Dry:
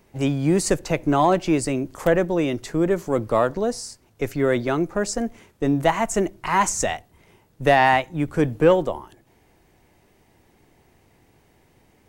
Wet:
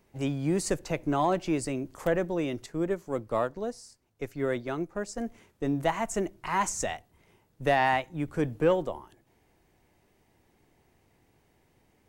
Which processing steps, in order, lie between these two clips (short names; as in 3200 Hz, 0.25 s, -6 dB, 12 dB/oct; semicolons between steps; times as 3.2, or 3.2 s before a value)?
2.66–5.18 upward expander 1.5:1, over -31 dBFS; gain -8 dB